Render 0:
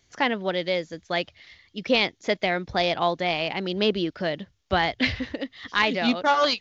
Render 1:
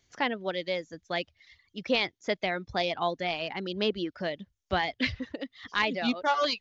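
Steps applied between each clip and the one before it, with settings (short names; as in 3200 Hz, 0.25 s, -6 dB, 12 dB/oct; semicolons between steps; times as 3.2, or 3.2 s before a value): reverb removal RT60 0.63 s; gain -5 dB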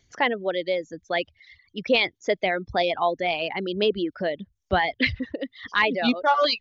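formant sharpening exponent 1.5; gain +6 dB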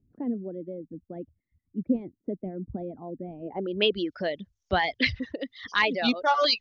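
low-pass sweep 250 Hz -> 6000 Hz, 3.42–3.96; gain -3 dB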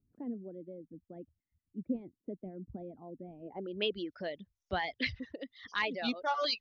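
gain -9 dB; MP3 56 kbps 44100 Hz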